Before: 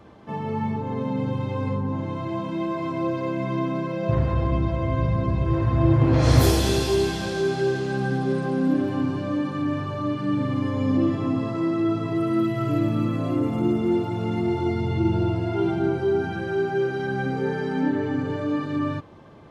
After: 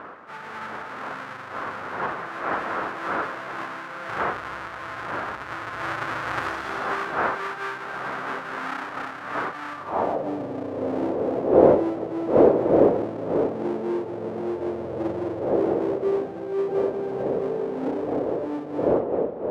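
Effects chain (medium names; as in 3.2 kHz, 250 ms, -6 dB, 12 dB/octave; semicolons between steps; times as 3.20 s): square wave that keeps the level; wind noise 520 Hz -18 dBFS; band-pass sweep 1.4 kHz -> 480 Hz, 9.70–10.32 s; trim -1 dB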